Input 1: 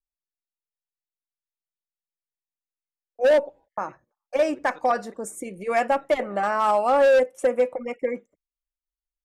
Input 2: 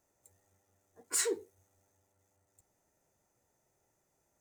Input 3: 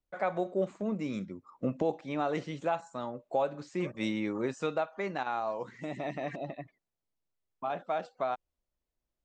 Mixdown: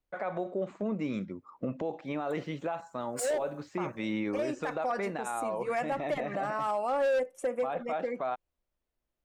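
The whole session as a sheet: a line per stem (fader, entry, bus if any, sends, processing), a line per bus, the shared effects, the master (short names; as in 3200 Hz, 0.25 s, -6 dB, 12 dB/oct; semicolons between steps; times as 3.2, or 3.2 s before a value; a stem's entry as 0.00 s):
-6.5 dB, 0.00 s, no send, dry
-2.5 dB, 2.05 s, no send, dry
+3.0 dB, 0.00 s, no send, tone controls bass -2 dB, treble -9 dB; limiter -27 dBFS, peak gain reduction 9.5 dB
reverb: off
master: limiter -23.5 dBFS, peak gain reduction 8.5 dB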